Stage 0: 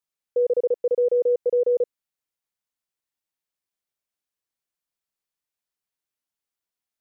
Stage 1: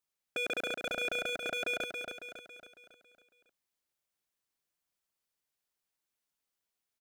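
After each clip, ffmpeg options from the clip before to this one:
ffmpeg -i in.wav -af "aeval=exprs='0.0398*(abs(mod(val(0)/0.0398+3,4)-2)-1)':channel_layout=same,aecho=1:1:276|552|828|1104|1380|1656:0.501|0.246|0.12|0.059|0.0289|0.0142" out.wav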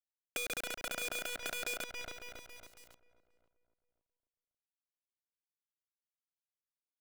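ffmpeg -i in.wav -filter_complex "[0:a]acrusher=bits=6:dc=4:mix=0:aa=0.000001,acrossover=split=880|5400[link_01][link_02][link_03];[link_01]acompressor=threshold=-46dB:ratio=4[link_04];[link_02]acompressor=threshold=-40dB:ratio=4[link_05];[link_03]acompressor=threshold=-43dB:ratio=4[link_06];[link_04][link_05][link_06]amix=inputs=3:normalize=0,asplit=2[link_07][link_08];[link_08]adelay=534,lowpass=frequency=1100:poles=1,volume=-16dB,asplit=2[link_09][link_10];[link_10]adelay=534,lowpass=frequency=1100:poles=1,volume=0.35,asplit=2[link_11][link_12];[link_12]adelay=534,lowpass=frequency=1100:poles=1,volume=0.35[link_13];[link_07][link_09][link_11][link_13]amix=inputs=4:normalize=0,volume=1dB" out.wav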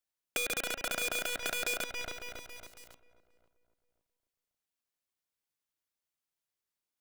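ffmpeg -i in.wav -af "bandreject=frequency=273.6:width_type=h:width=4,bandreject=frequency=547.2:width_type=h:width=4,bandreject=frequency=820.8:width_type=h:width=4,bandreject=frequency=1094.4:width_type=h:width=4,bandreject=frequency=1368:width_type=h:width=4,bandreject=frequency=1641.6:width_type=h:width=4,bandreject=frequency=1915.2:width_type=h:width=4,bandreject=frequency=2188.8:width_type=h:width=4,bandreject=frequency=2462.4:width_type=h:width=4,bandreject=frequency=2736:width_type=h:width=4,bandreject=frequency=3009.6:width_type=h:width=4,bandreject=frequency=3283.2:width_type=h:width=4,bandreject=frequency=3556.8:width_type=h:width=4,bandreject=frequency=3830.4:width_type=h:width=4,volume=5dB" out.wav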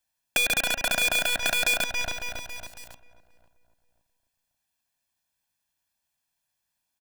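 ffmpeg -i in.wav -af "aecho=1:1:1.2:0.64,volume=7.5dB" out.wav

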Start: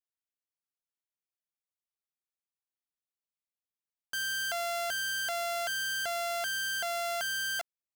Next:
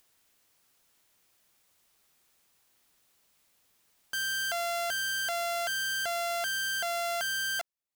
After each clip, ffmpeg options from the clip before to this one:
ffmpeg -i in.wav -af "acompressor=mode=upward:threshold=-50dB:ratio=2.5,volume=1.5dB" out.wav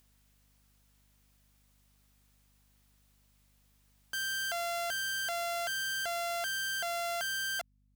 ffmpeg -i in.wav -af "aeval=exprs='val(0)+0.000562*(sin(2*PI*50*n/s)+sin(2*PI*2*50*n/s)/2+sin(2*PI*3*50*n/s)/3+sin(2*PI*4*50*n/s)/4+sin(2*PI*5*50*n/s)/5)':channel_layout=same,volume=-3dB" out.wav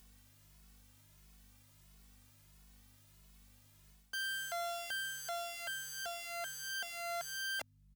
ffmpeg -i in.wav -filter_complex "[0:a]areverse,acompressor=threshold=-46dB:ratio=4,areverse,asplit=2[link_01][link_02];[link_02]adelay=2.3,afreqshift=1.5[link_03];[link_01][link_03]amix=inputs=2:normalize=1,volume=8dB" out.wav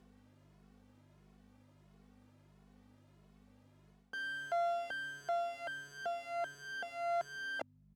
ffmpeg -i in.wav -af "bandpass=frequency=370:width_type=q:width=0.89:csg=0,volume=10.5dB" out.wav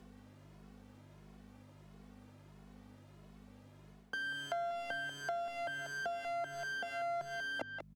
ffmpeg -i in.wav -filter_complex "[0:a]asplit=2[link_01][link_02];[link_02]adelay=190,highpass=300,lowpass=3400,asoftclip=type=hard:threshold=-35.5dB,volume=-9dB[link_03];[link_01][link_03]amix=inputs=2:normalize=0,acrossover=split=310[link_04][link_05];[link_05]acompressor=threshold=-44dB:ratio=6[link_06];[link_04][link_06]amix=inputs=2:normalize=0,volume=6.5dB" out.wav

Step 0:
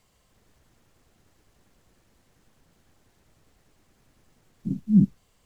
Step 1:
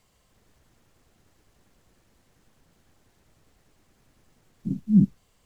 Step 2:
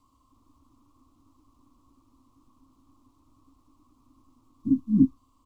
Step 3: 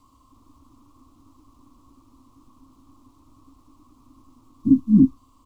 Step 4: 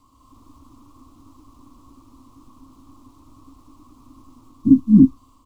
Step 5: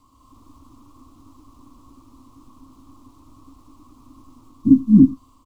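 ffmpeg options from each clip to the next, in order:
ffmpeg -i in.wav -af anull out.wav
ffmpeg -i in.wav -af "firequalizer=gain_entry='entry(110,0);entry(180,-14);entry(270,15);entry(400,-11);entry(760,-9);entry(1100,13);entry(1600,-27);entry(2400,-13);entry(3700,-8)':delay=0.05:min_phase=1" out.wav
ffmpeg -i in.wav -af "alimiter=limit=-14dB:level=0:latency=1:release=44,volume=8dB" out.wav
ffmpeg -i in.wav -af "dynaudnorm=framelen=140:gausssize=3:maxgain=5.5dB" out.wav
ffmpeg -i in.wav -af "aecho=1:1:90:0.0841" out.wav

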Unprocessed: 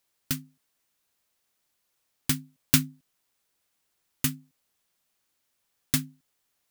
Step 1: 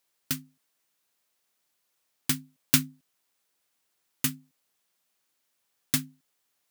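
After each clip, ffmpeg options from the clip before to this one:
ffmpeg -i in.wav -af "highpass=frequency=180:poles=1" out.wav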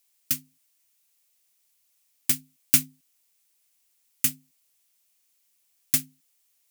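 ffmpeg -i in.wav -af "aexciter=amount=1.4:drive=8.9:freq=2100,volume=-5dB" out.wav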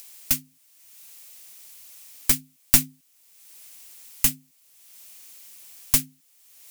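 ffmpeg -i in.wav -filter_complex "[0:a]asplit=2[link_01][link_02];[link_02]acompressor=mode=upward:threshold=-28dB:ratio=2.5,volume=0.5dB[link_03];[link_01][link_03]amix=inputs=2:normalize=0,aeval=exprs='clip(val(0),-1,0.178)':channel_layout=same,volume=-1dB" out.wav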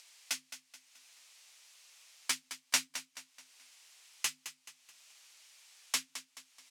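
ffmpeg -i in.wav -af "flanger=delay=5.8:depth=6.5:regen=-39:speed=0.94:shape=sinusoidal,highpass=760,lowpass=5800,aecho=1:1:215|430|645|860:0.251|0.1|0.0402|0.0161" out.wav

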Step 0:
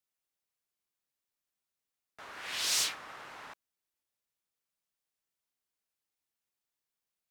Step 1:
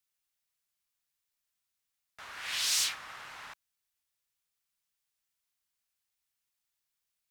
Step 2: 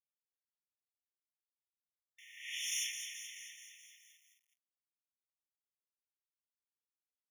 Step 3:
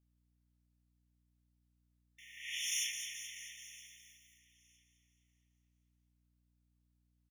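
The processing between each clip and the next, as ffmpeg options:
ffmpeg -i in.wav -filter_complex "[0:a]equalizer=frequency=370:width_type=o:width=2.5:gain=-11.5,asplit=2[link_01][link_02];[link_02]alimiter=level_in=4.5dB:limit=-24dB:level=0:latency=1,volume=-4.5dB,volume=0dB[link_03];[link_01][link_03]amix=inputs=2:normalize=0,volume=-1.5dB" out.wav
ffmpeg -i in.wav -filter_complex "[0:a]asplit=9[link_01][link_02][link_03][link_04][link_05][link_06][link_07][link_08][link_09];[link_02]adelay=214,afreqshift=71,volume=-8dB[link_10];[link_03]adelay=428,afreqshift=142,volume=-12dB[link_11];[link_04]adelay=642,afreqshift=213,volume=-16dB[link_12];[link_05]adelay=856,afreqshift=284,volume=-20dB[link_13];[link_06]adelay=1070,afreqshift=355,volume=-24.1dB[link_14];[link_07]adelay=1284,afreqshift=426,volume=-28.1dB[link_15];[link_08]adelay=1498,afreqshift=497,volume=-32.1dB[link_16];[link_09]adelay=1712,afreqshift=568,volume=-36.1dB[link_17];[link_01][link_10][link_11][link_12][link_13][link_14][link_15][link_16][link_17]amix=inputs=9:normalize=0,aeval=exprs='val(0)*gte(abs(val(0)),0.00188)':channel_layout=same,afftfilt=real='re*eq(mod(floor(b*sr/1024/1800),2),1)':imag='im*eq(mod(floor(b*sr/1024/1800),2),1)':win_size=1024:overlap=0.75,volume=-5.5dB" out.wav
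ffmpeg -i in.wav -af "aecho=1:1:964|1928:0.0891|0.0178,aeval=exprs='val(0)+0.000158*(sin(2*PI*60*n/s)+sin(2*PI*2*60*n/s)/2+sin(2*PI*3*60*n/s)/3+sin(2*PI*4*60*n/s)/4+sin(2*PI*5*60*n/s)/5)':channel_layout=same,volume=1dB" out.wav

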